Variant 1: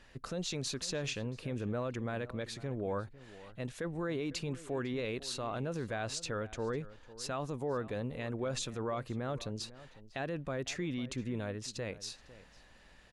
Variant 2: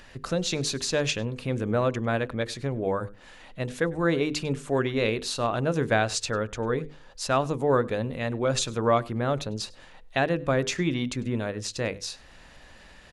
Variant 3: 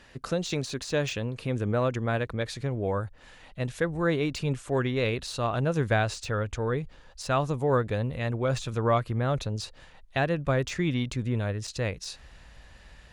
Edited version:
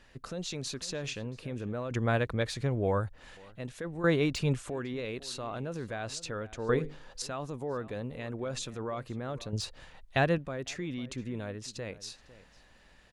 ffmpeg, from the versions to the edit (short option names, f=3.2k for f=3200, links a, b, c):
-filter_complex "[2:a]asplit=3[a][b][c];[0:a]asplit=5[d][e][f][g][h];[d]atrim=end=1.912[i];[a]atrim=start=1.908:end=3.372[j];[e]atrim=start=3.368:end=4.042[k];[b]atrim=start=4.038:end=4.702[l];[f]atrim=start=4.698:end=6.692[m];[1:a]atrim=start=6.688:end=7.222[n];[g]atrim=start=7.218:end=9.532[o];[c]atrim=start=9.528:end=10.382[p];[h]atrim=start=10.378[q];[i][j]acrossfade=d=0.004:c1=hsin:c2=hsin[r];[r][k]acrossfade=d=0.004:c1=hsin:c2=hsin[s];[s][l]acrossfade=d=0.004:c1=hsin:c2=hsin[t];[t][m]acrossfade=d=0.004:c1=hsin:c2=hsin[u];[u][n]acrossfade=d=0.004:c1=hsin:c2=hsin[v];[v][o]acrossfade=d=0.004:c1=hsin:c2=hsin[w];[w][p]acrossfade=d=0.004:c1=hsin:c2=hsin[x];[x][q]acrossfade=d=0.004:c1=hsin:c2=hsin"